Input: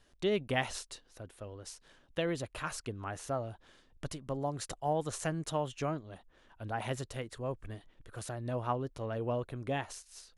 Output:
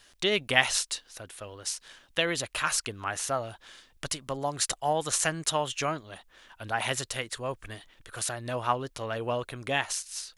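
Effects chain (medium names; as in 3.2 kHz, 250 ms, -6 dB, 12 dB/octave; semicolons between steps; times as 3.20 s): tilt shelf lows -8 dB, about 890 Hz; trim +7 dB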